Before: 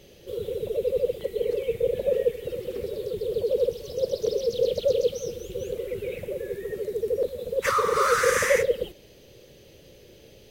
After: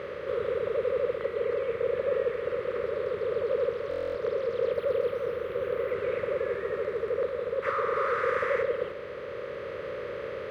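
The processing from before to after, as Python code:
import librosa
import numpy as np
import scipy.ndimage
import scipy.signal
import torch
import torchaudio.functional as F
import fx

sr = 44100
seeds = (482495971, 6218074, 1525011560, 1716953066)

y = fx.bin_compress(x, sr, power=0.4)
y = scipy.signal.sosfilt(scipy.signal.butter(4, 59.0, 'highpass', fs=sr, output='sos'), y)
y = fx.low_shelf(y, sr, hz=290.0, db=-5.5)
y = fx.rider(y, sr, range_db=3, speed_s=2.0)
y = fx.air_absorb(y, sr, metres=460.0)
y = fx.buffer_glitch(y, sr, at_s=(3.89,), block=1024, repeats=10)
y = fx.resample_linear(y, sr, factor=3, at=(4.72, 5.92))
y = y * 10.0 ** (-6.0 / 20.0)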